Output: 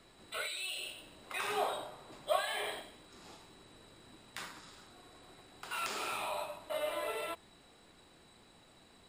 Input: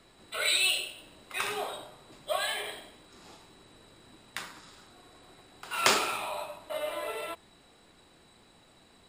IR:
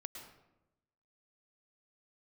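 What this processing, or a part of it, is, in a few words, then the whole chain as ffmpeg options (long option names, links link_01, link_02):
de-esser from a sidechain: -filter_complex "[0:a]asplit=2[link_01][link_02];[link_02]highpass=frequency=4200:width=0.5412,highpass=frequency=4200:width=1.3066,apad=whole_len=400587[link_03];[link_01][link_03]sidechaincompress=threshold=-43dB:ratio=5:attack=2.4:release=25,asettb=1/sr,asplit=3[link_04][link_05][link_06];[link_04]atrim=end=1.234[link_07];[link_05]atrim=start=1.23:end=2.82,asetpts=PTS-STARTPTS,afade=type=in:duration=0.004:curve=qsin,afade=type=out:start_time=1.586:duration=0.004:curve=qsin,equalizer=frequency=830:width=0.66:gain=5[link_08];[link_06]atrim=start=2.816[link_09];[link_07][link_08]acrossfade=duration=0.004:curve1=hsin:curve2=qsin[link_10];[link_10][link_09]acrossfade=duration=0.004:curve1=qsin:curve2=hsin,volume=-2dB"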